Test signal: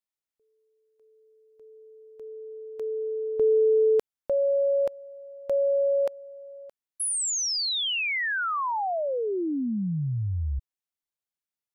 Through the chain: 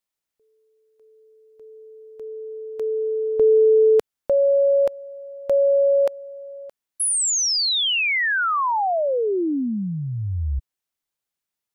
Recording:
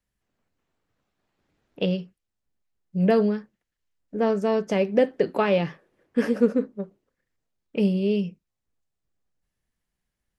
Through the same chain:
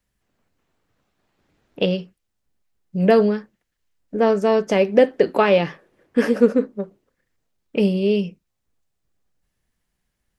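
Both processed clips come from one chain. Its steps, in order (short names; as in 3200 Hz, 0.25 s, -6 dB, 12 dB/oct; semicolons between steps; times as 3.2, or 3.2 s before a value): dynamic EQ 140 Hz, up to -6 dB, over -37 dBFS, Q 1; gain +6.5 dB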